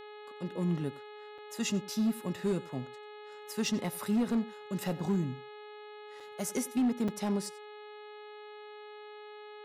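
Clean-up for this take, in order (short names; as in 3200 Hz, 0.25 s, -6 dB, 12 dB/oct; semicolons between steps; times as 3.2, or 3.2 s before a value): clip repair -24 dBFS; de-hum 420.6 Hz, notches 10; interpolate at 1.38/6.2/7.08, 4.7 ms; inverse comb 91 ms -20.5 dB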